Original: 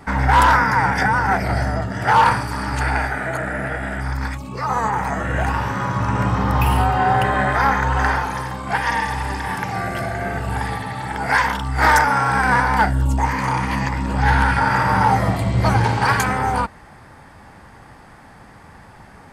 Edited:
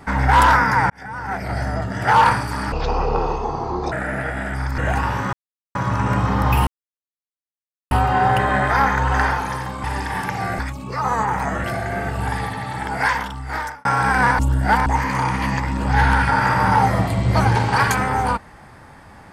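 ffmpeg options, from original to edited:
-filter_complex "[0:a]asplit=13[a][b][c][d][e][f][g][h][i][j][k][l][m];[a]atrim=end=0.9,asetpts=PTS-STARTPTS,afade=t=out:st=0.896:d=0.004:c=hsin[n];[b]atrim=start=0.9:end=2.724,asetpts=PTS-STARTPTS,afade=t=in:d=1.03[o];[c]atrim=start=2.72:end=3.38,asetpts=PTS-STARTPTS,asetrate=24255,aresample=44100[p];[d]atrim=start=3.376:end=4.242[q];[e]atrim=start=5.288:end=5.84,asetpts=PTS-STARTPTS,afade=t=out:st=0.548:d=0.004:c=hsin,apad=pad_dur=0.42[r];[f]atrim=start=5.84:end=6.76,asetpts=PTS-STARTPTS,afade=t=in:d=0.004:c=hsin,afade=t=out:st=0.916:d=0.004:c=hsin,apad=pad_dur=1.24[s];[g]atrim=start=6.76:end=8.692,asetpts=PTS-STARTPTS,afade=t=in:d=0.004:c=hsin[t];[h]atrim=start=9.178:end=9.932[u];[i]atrim=start=4.238:end=5.292[v];[j]atrim=start=9.928:end=12.14,asetpts=PTS-STARTPTS,afade=t=out:st=1.202:d=1.01[w];[k]atrim=start=12.14:end=12.682,asetpts=PTS-STARTPTS,afade=t=in:d=0.004:c=hsin[x];[l]atrim=start=12.678:end=13.152,asetpts=PTS-STARTPTS,areverse[y];[m]atrim=start=13.148[z];[n][o]concat=n=2:v=0:a=1[aa];[aa][p]acrossfade=d=0.004:c1=hsin:c2=hsin[ab];[ab][q]acrossfade=d=0.004:c1=hsin:c2=hsin[ac];[r][s][t]concat=n=3:v=0:a=1[ad];[ac][ad]acrossfade=d=0.004:c1=hsin:c2=hsin[ae];[ae][u]acrossfade=d=0.004:c1=hsin:c2=hsin[af];[af][v]acrossfade=d=0.004:c1=hsin:c2=hsin[ag];[w][x]concat=n=2:v=0:a=1[ah];[ag][ah]acrossfade=d=0.004:c1=hsin:c2=hsin[ai];[ai][y]acrossfade=d=0.004:c1=hsin:c2=hsin[aj];[aj][z]acrossfade=d=0.004:c1=hsin:c2=hsin"

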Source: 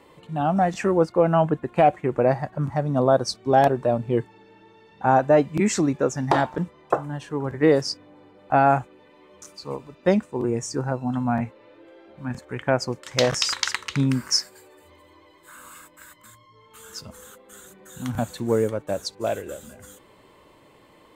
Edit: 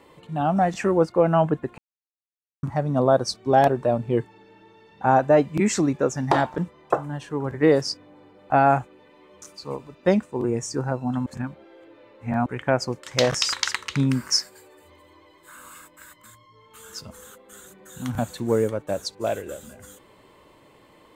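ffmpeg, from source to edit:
-filter_complex "[0:a]asplit=5[a][b][c][d][e];[a]atrim=end=1.78,asetpts=PTS-STARTPTS,afade=t=out:st=1.776:d=0.004:c=hsin[f];[b]atrim=start=1.78:end=2.63,asetpts=PTS-STARTPTS,volume=0[g];[c]atrim=start=2.63:end=11.262,asetpts=PTS-STARTPTS,afade=t=in:d=0.004:c=hsin[h];[d]atrim=start=11.258:end=12.462,asetpts=PTS-STARTPTS,areverse[i];[e]atrim=start=12.458[j];[f][g][h]concat=n=3:v=0:a=1[k];[k][i]acrossfade=d=0.004:c1=hsin:c2=hsin[l];[l][j]acrossfade=d=0.004:c1=hsin:c2=hsin"

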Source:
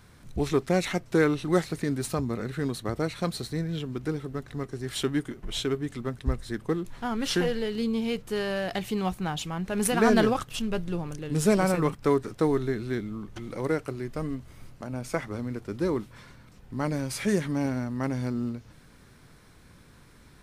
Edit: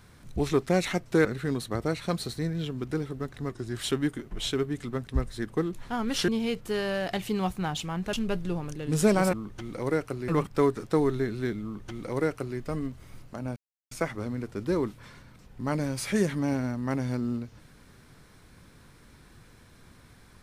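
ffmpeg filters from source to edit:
-filter_complex "[0:a]asplit=9[a][b][c][d][e][f][g][h][i];[a]atrim=end=1.252[j];[b]atrim=start=2.388:end=4.644[k];[c]atrim=start=4.64:end=4.93,asetpts=PTS-STARTPTS,asetrate=41013,aresample=44100[l];[d]atrim=start=4.926:end=7.402[m];[e]atrim=start=7.898:end=9.752[n];[f]atrim=start=10.558:end=11.762[o];[g]atrim=start=13.108:end=14.062[p];[h]atrim=start=11.758:end=15.04,asetpts=PTS-STARTPTS,afade=t=out:st=3.278:d=0.004:c=hsin,apad=pad_dur=0.35[q];[i]atrim=start=15.04,asetpts=PTS-STARTPTS,afade=t=in:d=0.004:c=hsin[r];[j][k]acrossfade=d=0.004:c1=hsin:c2=hsin[s];[s][l]acrossfade=d=0.004:c1=hsin:c2=hsin[t];[t][m]acrossfade=d=0.004:c1=hsin:c2=hsin[u];[u][n]acrossfade=d=0.004:c1=hsin:c2=hsin[v];[v][o]acrossfade=d=0.004:c1=hsin:c2=hsin[w];[w][p]acrossfade=d=0.004:c1=hsin:c2=hsin[x];[q][r]concat=n=2:v=0:a=1[y];[x][y]acrossfade=d=0.004:c1=hsin:c2=hsin"

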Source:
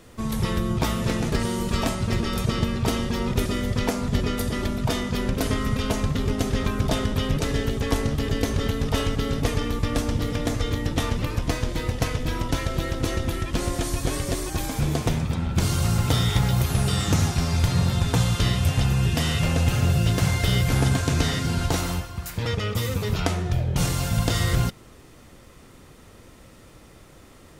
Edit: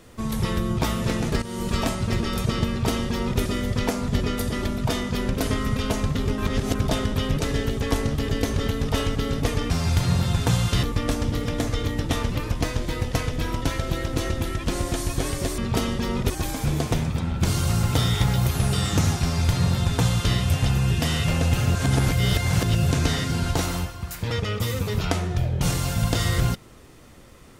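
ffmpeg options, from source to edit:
-filter_complex "[0:a]asplit=10[a][b][c][d][e][f][g][h][i][j];[a]atrim=end=1.42,asetpts=PTS-STARTPTS,afade=t=out:st=1.416:d=0.004:c=hsin:silence=0.211349[k];[b]atrim=start=1.42:end=6.382,asetpts=PTS-STARTPTS,afade=t=in:d=0.25:silence=0.211349[l];[c]atrim=start=6.378:end=6.752,asetpts=PTS-STARTPTS,areverse[m];[d]atrim=start=6.748:end=9.702[n];[e]atrim=start=17.368:end=18.502[o];[f]atrim=start=9.698:end=14.452[p];[g]atrim=start=2.688:end=3.412[q];[h]atrim=start=14.448:end=19.902[r];[i]atrim=start=19.898:end=21.062,asetpts=PTS-STARTPTS,areverse[s];[j]atrim=start=21.058[t];[k][l]concat=n=2:v=0:a=1[u];[u][m]acrossfade=d=0.004:c1=hsin:c2=hsin[v];[v][n]acrossfade=d=0.004:c1=hsin:c2=hsin[w];[w][o]acrossfade=d=0.004:c1=hsin:c2=hsin[x];[x][p]acrossfade=d=0.004:c1=hsin:c2=hsin[y];[y][q]acrossfade=d=0.004:c1=hsin:c2=hsin[z];[z][r]acrossfade=d=0.004:c1=hsin:c2=hsin[aa];[aa][s]acrossfade=d=0.004:c1=hsin:c2=hsin[ab];[ab][t]acrossfade=d=0.004:c1=hsin:c2=hsin"

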